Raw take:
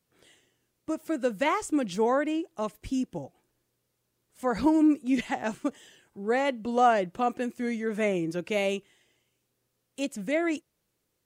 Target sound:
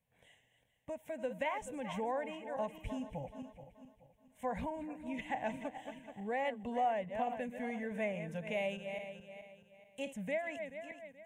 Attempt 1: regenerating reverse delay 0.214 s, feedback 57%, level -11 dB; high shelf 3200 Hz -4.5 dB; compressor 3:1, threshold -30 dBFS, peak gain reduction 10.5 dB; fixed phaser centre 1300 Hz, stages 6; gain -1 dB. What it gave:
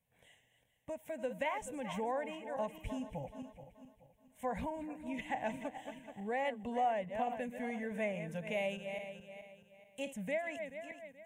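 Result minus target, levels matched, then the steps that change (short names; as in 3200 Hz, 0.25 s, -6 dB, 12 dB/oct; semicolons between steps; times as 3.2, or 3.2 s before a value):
8000 Hz band +2.5 dB
add after compressor: high shelf 8200 Hz -6 dB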